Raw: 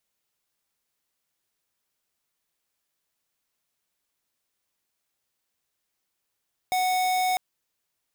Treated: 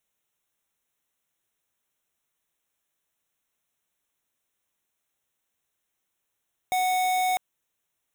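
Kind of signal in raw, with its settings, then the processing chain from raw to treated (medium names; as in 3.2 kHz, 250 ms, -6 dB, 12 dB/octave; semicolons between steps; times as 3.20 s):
tone square 739 Hz -24 dBFS 0.65 s
Butterworth band-stop 4.7 kHz, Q 3.2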